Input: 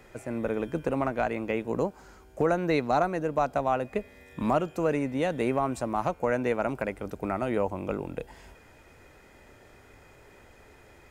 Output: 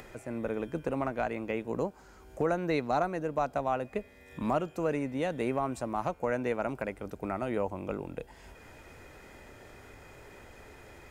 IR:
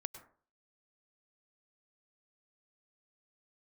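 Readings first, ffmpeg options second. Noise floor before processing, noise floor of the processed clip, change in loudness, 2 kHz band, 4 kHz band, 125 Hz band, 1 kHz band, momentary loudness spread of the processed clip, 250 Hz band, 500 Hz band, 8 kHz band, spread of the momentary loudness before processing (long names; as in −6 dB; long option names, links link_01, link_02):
−55 dBFS, −55 dBFS, −4.0 dB, −4.0 dB, −4.0 dB, −4.0 dB, −4.0 dB, 21 LU, −4.0 dB, −4.0 dB, −3.5 dB, 8 LU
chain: -af "acompressor=mode=upward:threshold=-38dB:ratio=2.5,volume=-4dB"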